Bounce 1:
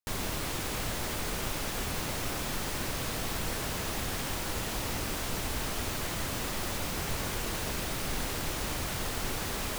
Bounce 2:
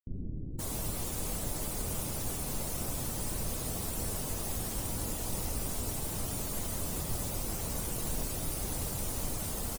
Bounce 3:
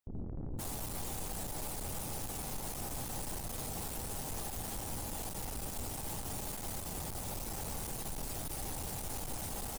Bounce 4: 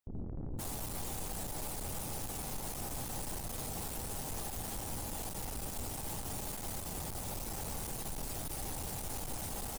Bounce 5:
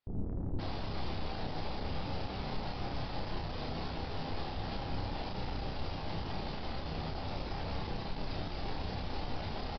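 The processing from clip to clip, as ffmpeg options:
ffmpeg -i in.wav -filter_complex "[0:a]afftdn=noise_reduction=16:noise_floor=-42,firequalizer=gain_entry='entry(300,0);entry(1600,-11);entry(9200,11)':delay=0.05:min_phase=1,acrossover=split=330[link_01][link_02];[link_02]adelay=520[link_03];[link_01][link_03]amix=inputs=2:normalize=0" out.wav
ffmpeg -i in.wav -af "equalizer=frequency=810:width_type=o:width=0.3:gain=8.5,alimiter=level_in=5.5dB:limit=-24dB:level=0:latency=1:release=158,volume=-5.5dB,aeval=exprs='(tanh(158*val(0)+0.35)-tanh(0.35))/158':channel_layout=same,volume=6.5dB" out.wav
ffmpeg -i in.wav -af anull out.wav
ffmpeg -i in.wav -filter_complex "[0:a]flanger=delay=9.8:depth=3.1:regen=-58:speed=0.37:shape=triangular,aresample=11025,aresample=44100,asplit=2[link_01][link_02];[link_02]adelay=31,volume=-4dB[link_03];[link_01][link_03]amix=inputs=2:normalize=0,volume=7dB" out.wav

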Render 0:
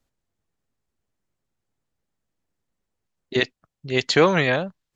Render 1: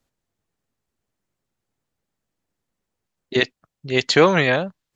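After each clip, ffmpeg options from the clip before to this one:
ffmpeg -i in.wav -af "lowshelf=frequency=67:gain=-6,volume=2.5dB" out.wav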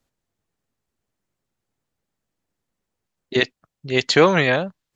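ffmpeg -i in.wav -af anull out.wav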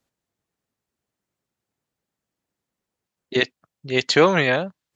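ffmpeg -i in.wav -af "highpass=frequency=95:poles=1,volume=-1dB" out.wav

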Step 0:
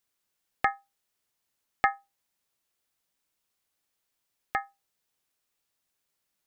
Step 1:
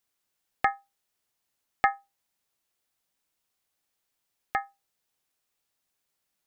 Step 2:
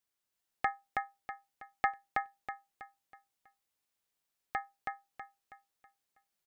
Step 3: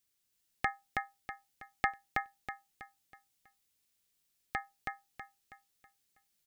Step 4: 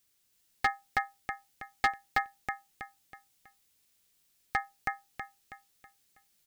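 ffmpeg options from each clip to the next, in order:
ffmpeg -i in.wav -af "equalizer=frequency=760:width_type=o:width=0.25:gain=2.5" out.wav
ffmpeg -i in.wav -af "aecho=1:1:323|646|969|1292|1615:0.708|0.269|0.102|0.0388|0.0148,volume=-7dB" out.wav
ffmpeg -i in.wav -af "equalizer=frequency=870:width=0.55:gain=-11,volume=8dB" out.wav
ffmpeg -i in.wav -af "asoftclip=type=hard:threshold=-26.5dB,volume=7dB" out.wav

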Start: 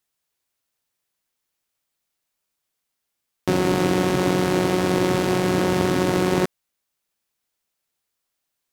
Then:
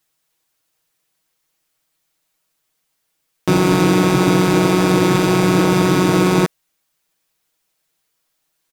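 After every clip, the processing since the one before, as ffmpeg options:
ffmpeg -i in.wav -filter_complex "[0:a]asplit=2[link_01][link_02];[link_02]alimiter=limit=-15.5dB:level=0:latency=1:release=19,volume=0.5dB[link_03];[link_01][link_03]amix=inputs=2:normalize=0,aecho=1:1:6.3:0.8" out.wav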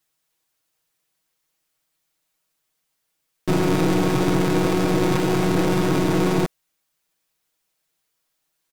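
ffmpeg -i in.wav -af "aeval=exprs='(tanh(3.98*val(0)+0.6)-tanh(0.6))/3.98':channel_layout=same,volume=-1dB" out.wav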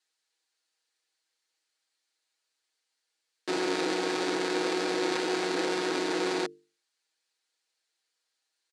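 ffmpeg -i in.wav -af "highpass=frequency=310:width=0.5412,highpass=frequency=310:width=1.3066,equalizer=frequency=310:width_type=q:width=4:gain=-3,equalizer=frequency=620:width_type=q:width=4:gain=-6,equalizer=frequency=1100:width_type=q:width=4:gain=-5,equalizer=frequency=1700:width_type=q:width=4:gain=3,equalizer=frequency=4300:width_type=q:width=4:gain=7,lowpass=frequency=8900:width=0.5412,lowpass=frequency=8900:width=1.3066,bandreject=frequency=50:width_type=h:width=6,bandreject=frequency=100:width_type=h:width=6,bandreject=frequency=150:width_type=h:width=6,bandreject=frequency=200:width_type=h:width=6,bandreject=frequency=250:width_type=h:width=6,bandreject=frequency=300:width_type=h:width=6,bandreject=frequency=350:width_type=h:width=6,bandreject=frequency=400:width_type=h:width=6,bandreject=frequency=450:width_type=h:width=6,volume=-4.5dB" out.wav

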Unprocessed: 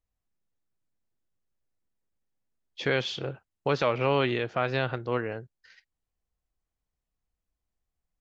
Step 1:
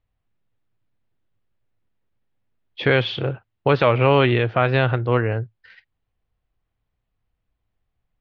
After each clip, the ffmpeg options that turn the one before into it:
ffmpeg -i in.wav -af "lowpass=frequency=3600:width=0.5412,lowpass=frequency=3600:width=1.3066,equalizer=frequency=110:width=3.9:gain=10.5,volume=8.5dB" out.wav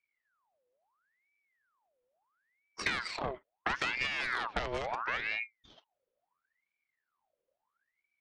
ffmpeg -i in.wav -af "acompressor=threshold=-19dB:ratio=4,aeval=exprs='0.501*(cos(1*acos(clip(val(0)/0.501,-1,1)))-cos(1*PI/2))+0.1*(cos(6*acos(clip(val(0)/0.501,-1,1)))-cos(6*PI/2))':channel_layout=same,aeval=exprs='val(0)*sin(2*PI*1400*n/s+1400*0.65/0.74*sin(2*PI*0.74*n/s))':channel_layout=same,volume=-7.5dB" out.wav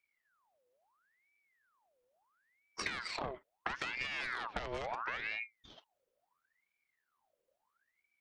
ffmpeg -i in.wav -af "acompressor=threshold=-37dB:ratio=6,volume=2dB" out.wav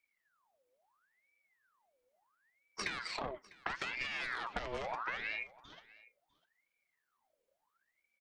ffmpeg -i in.wav -af "flanger=delay=3:depth=4.2:regen=59:speed=1.5:shape=triangular,aecho=1:1:650:0.0841,volume=4dB" out.wav

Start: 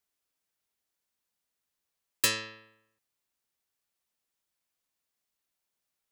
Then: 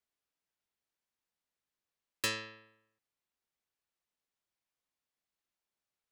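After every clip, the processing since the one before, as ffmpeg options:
ffmpeg -i in.wav -af "lowpass=frequency=4000:poles=1,volume=-3.5dB" out.wav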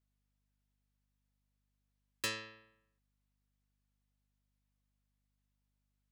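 ffmpeg -i in.wav -af "aeval=exprs='val(0)+0.000126*(sin(2*PI*50*n/s)+sin(2*PI*2*50*n/s)/2+sin(2*PI*3*50*n/s)/3+sin(2*PI*4*50*n/s)/4+sin(2*PI*5*50*n/s)/5)':channel_layout=same,volume=-3.5dB" out.wav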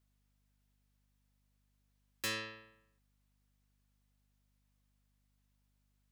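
ffmpeg -i in.wav -af "asoftclip=type=tanh:threshold=-38.5dB,volume=6dB" out.wav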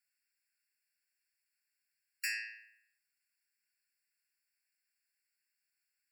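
ffmpeg -i in.wav -af "afftfilt=real='re*eq(mod(floor(b*sr/1024/1400),2),1)':imag='im*eq(mod(floor(b*sr/1024/1400),2),1)':win_size=1024:overlap=0.75,volume=3.5dB" out.wav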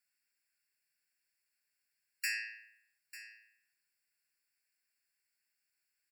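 ffmpeg -i in.wav -af "aecho=1:1:896:0.178,volume=1dB" out.wav

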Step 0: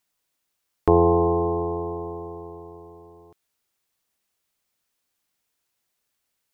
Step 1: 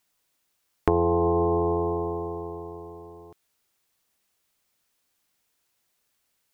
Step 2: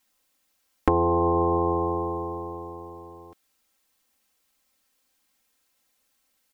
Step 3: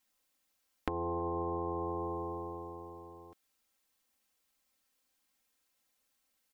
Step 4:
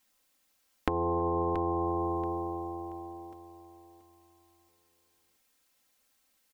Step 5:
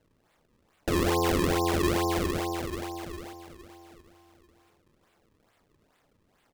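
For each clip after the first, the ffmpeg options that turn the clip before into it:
ffmpeg -i in.wav -af "acompressor=threshold=-22dB:ratio=6,volume=3.5dB" out.wav
ffmpeg -i in.wav -af "aecho=1:1:3.8:0.85" out.wav
ffmpeg -i in.wav -af "acompressor=threshold=-25dB:ratio=6,volume=-7dB" out.wav
ffmpeg -i in.wav -af "aecho=1:1:680|1360|2040:0.251|0.0703|0.0197,volume=6dB" out.wav
ffmpeg -i in.wav -af "acrusher=samples=35:mix=1:aa=0.000001:lfo=1:lforange=56:lforate=2.3,volume=4dB" out.wav

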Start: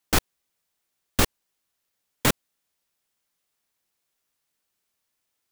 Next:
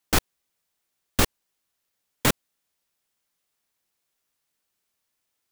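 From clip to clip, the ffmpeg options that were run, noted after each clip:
ffmpeg -i in.wav -af anull out.wav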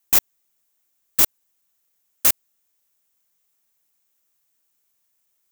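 ffmpeg -i in.wav -af "aeval=exprs='(mod(5.96*val(0)+1,2)-1)/5.96':channel_layout=same,aexciter=amount=2.6:drive=2.5:freq=6200" out.wav

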